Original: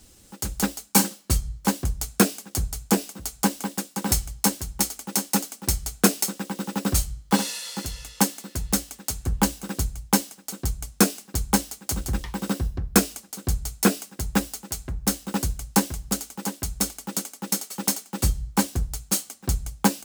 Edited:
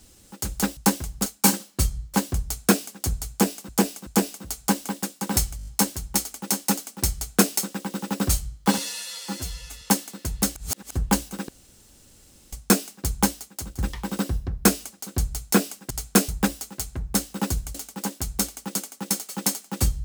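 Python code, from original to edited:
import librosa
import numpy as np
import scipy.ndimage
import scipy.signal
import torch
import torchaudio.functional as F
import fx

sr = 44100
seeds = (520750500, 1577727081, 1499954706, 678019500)

y = fx.edit(x, sr, fx.repeat(start_s=2.82, length_s=0.38, count=3),
    fx.stutter(start_s=4.32, slice_s=0.02, count=6),
    fx.duplicate(start_s=5.79, length_s=0.38, to_s=14.21),
    fx.stretch_span(start_s=7.43, length_s=0.69, factor=1.5),
    fx.reverse_span(start_s=8.86, length_s=0.4),
    fx.room_tone_fill(start_s=9.79, length_s=1.04),
    fx.fade_out_to(start_s=11.54, length_s=0.55, floor_db=-13.0),
    fx.move(start_s=15.67, length_s=0.49, to_s=0.77), tone=tone)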